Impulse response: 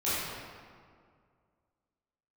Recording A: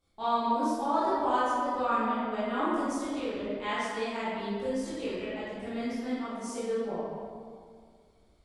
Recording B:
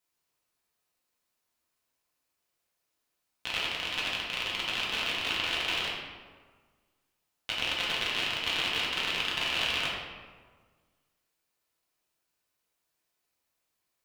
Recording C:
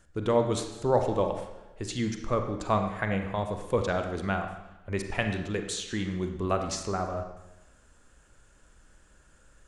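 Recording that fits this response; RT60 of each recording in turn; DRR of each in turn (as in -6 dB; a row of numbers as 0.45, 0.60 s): A; 2.0, 1.5, 1.0 s; -12.5, -6.0, 5.0 dB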